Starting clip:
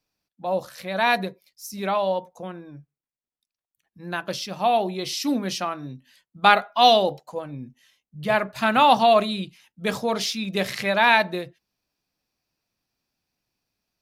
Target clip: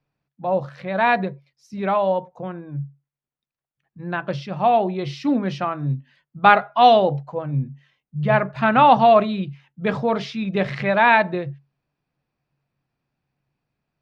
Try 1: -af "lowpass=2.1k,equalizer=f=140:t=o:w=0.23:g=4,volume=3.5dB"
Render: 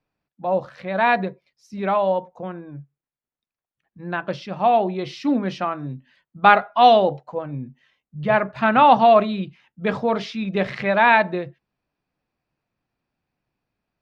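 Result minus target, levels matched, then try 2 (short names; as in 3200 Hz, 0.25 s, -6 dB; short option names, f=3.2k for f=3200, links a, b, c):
125 Hz band -6.0 dB
-af "lowpass=2.1k,equalizer=f=140:t=o:w=0.23:g=15.5,volume=3.5dB"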